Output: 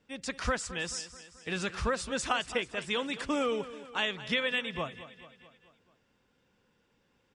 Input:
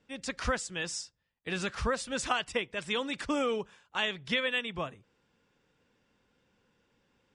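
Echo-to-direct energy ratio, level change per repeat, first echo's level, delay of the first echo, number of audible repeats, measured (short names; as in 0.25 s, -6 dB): -13.5 dB, -5.0 dB, -15.0 dB, 0.217 s, 4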